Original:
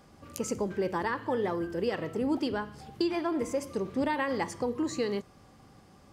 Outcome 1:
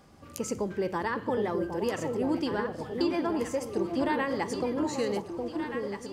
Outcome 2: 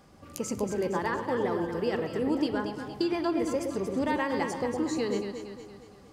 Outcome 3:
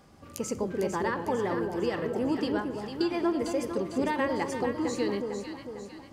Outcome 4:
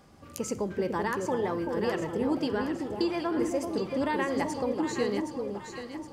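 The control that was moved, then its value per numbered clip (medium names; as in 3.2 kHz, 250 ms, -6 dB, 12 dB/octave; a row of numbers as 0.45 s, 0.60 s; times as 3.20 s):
echo whose repeats swap between lows and highs, time: 763 ms, 116 ms, 226 ms, 384 ms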